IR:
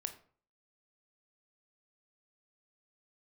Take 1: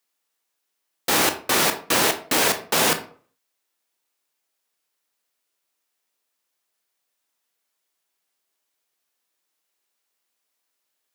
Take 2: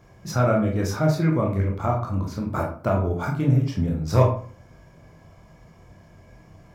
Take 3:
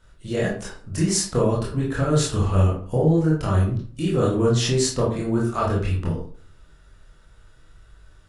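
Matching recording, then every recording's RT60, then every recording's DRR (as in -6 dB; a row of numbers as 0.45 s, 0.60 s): 1; 0.45 s, 0.45 s, 0.45 s; 7.0 dB, -1.0 dB, -5.5 dB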